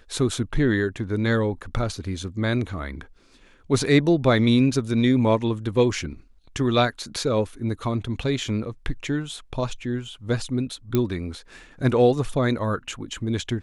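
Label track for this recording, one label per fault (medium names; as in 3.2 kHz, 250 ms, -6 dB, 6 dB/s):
10.950000	10.950000	pop -9 dBFS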